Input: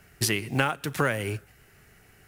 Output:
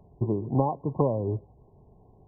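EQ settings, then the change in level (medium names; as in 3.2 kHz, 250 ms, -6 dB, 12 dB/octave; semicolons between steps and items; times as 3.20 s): brick-wall FIR low-pass 1.1 kHz; +3.0 dB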